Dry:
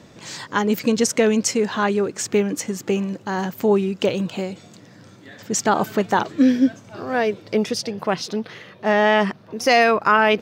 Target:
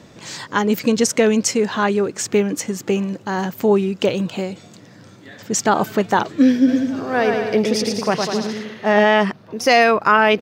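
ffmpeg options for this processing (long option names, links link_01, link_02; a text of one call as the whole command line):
ffmpeg -i in.wav -filter_complex "[0:a]asplit=3[link_01][link_02][link_03];[link_01]afade=type=out:start_time=6.67:duration=0.02[link_04];[link_02]aecho=1:1:110|198|268.4|324.7|369.8:0.631|0.398|0.251|0.158|0.1,afade=type=in:start_time=6.67:duration=0.02,afade=type=out:start_time=9.03:duration=0.02[link_05];[link_03]afade=type=in:start_time=9.03:duration=0.02[link_06];[link_04][link_05][link_06]amix=inputs=3:normalize=0,volume=2dB" out.wav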